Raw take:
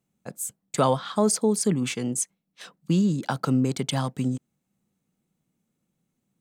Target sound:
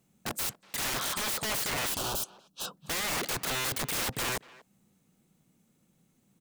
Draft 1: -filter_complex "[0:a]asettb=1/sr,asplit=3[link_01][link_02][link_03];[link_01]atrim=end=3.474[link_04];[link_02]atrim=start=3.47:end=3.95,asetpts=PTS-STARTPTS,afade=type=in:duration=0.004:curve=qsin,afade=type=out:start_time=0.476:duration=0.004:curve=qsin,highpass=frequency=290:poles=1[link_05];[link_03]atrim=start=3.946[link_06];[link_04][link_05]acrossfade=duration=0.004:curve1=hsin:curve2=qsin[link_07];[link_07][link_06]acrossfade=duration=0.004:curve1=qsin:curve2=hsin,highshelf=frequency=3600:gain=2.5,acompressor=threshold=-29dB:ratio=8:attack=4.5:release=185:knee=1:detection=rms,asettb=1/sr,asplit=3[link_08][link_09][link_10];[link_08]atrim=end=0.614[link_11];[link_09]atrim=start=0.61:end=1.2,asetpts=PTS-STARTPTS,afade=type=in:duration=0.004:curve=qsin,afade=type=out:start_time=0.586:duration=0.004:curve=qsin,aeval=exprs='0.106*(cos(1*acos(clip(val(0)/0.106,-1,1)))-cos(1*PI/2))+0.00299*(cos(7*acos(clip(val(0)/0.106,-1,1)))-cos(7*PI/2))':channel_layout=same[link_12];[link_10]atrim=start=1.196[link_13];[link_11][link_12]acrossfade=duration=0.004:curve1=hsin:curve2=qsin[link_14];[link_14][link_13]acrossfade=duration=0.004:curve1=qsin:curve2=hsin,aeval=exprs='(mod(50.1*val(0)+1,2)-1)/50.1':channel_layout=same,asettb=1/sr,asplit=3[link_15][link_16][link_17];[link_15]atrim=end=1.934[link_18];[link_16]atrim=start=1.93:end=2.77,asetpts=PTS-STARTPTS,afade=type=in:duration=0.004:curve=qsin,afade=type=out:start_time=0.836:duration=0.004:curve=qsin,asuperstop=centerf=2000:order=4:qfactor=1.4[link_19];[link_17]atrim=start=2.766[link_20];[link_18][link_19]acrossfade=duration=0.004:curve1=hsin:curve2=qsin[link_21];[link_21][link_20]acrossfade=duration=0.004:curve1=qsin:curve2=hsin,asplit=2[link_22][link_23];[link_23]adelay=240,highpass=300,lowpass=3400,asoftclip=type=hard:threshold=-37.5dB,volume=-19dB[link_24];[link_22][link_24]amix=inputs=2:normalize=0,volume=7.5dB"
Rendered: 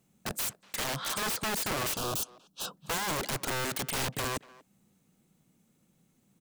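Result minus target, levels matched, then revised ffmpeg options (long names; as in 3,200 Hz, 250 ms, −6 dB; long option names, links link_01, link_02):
downward compressor: peak gain reduction +6.5 dB
-filter_complex "[0:a]asettb=1/sr,asplit=3[link_01][link_02][link_03];[link_01]atrim=end=3.474[link_04];[link_02]atrim=start=3.47:end=3.95,asetpts=PTS-STARTPTS,afade=type=in:duration=0.004:curve=qsin,afade=type=out:start_time=0.476:duration=0.004:curve=qsin,highpass=frequency=290:poles=1[link_05];[link_03]atrim=start=3.946[link_06];[link_04][link_05]acrossfade=duration=0.004:curve1=hsin:curve2=qsin[link_07];[link_07][link_06]acrossfade=duration=0.004:curve1=qsin:curve2=hsin,highshelf=frequency=3600:gain=2.5,acompressor=threshold=-21.5dB:ratio=8:attack=4.5:release=185:knee=1:detection=rms,asettb=1/sr,asplit=3[link_08][link_09][link_10];[link_08]atrim=end=0.614[link_11];[link_09]atrim=start=0.61:end=1.2,asetpts=PTS-STARTPTS,afade=type=in:duration=0.004:curve=qsin,afade=type=out:start_time=0.586:duration=0.004:curve=qsin,aeval=exprs='0.106*(cos(1*acos(clip(val(0)/0.106,-1,1)))-cos(1*PI/2))+0.00299*(cos(7*acos(clip(val(0)/0.106,-1,1)))-cos(7*PI/2))':channel_layout=same[link_12];[link_10]atrim=start=1.196[link_13];[link_11][link_12]acrossfade=duration=0.004:curve1=hsin:curve2=qsin[link_14];[link_14][link_13]acrossfade=duration=0.004:curve1=qsin:curve2=hsin,aeval=exprs='(mod(50.1*val(0)+1,2)-1)/50.1':channel_layout=same,asettb=1/sr,asplit=3[link_15][link_16][link_17];[link_15]atrim=end=1.934[link_18];[link_16]atrim=start=1.93:end=2.77,asetpts=PTS-STARTPTS,afade=type=in:duration=0.004:curve=qsin,afade=type=out:start_time=0.836:duration=0.004:curve=qsin,asuperstop=centerf=2000:order=4:qfactor=1.4[link_19];[link_17]atrim=start=2.766[link_20];[link_18][link_19]acrossfade=duration=0.004:curve1=hsin:curve2=qsin[link_21];[link_21][link_20]acrossfade=duration=0.004:curve1=qsin:curve2=hsin,asplit=2[link_22][link_23];[link_23]adelay=240,highpass=300,lowpass=3400,asoftclip=type=hard:threshold=-37.5dB,volume=-19dB[link_24];[link_22][link_24]amix=inputs=2:normalize=0,volume=7.5dB"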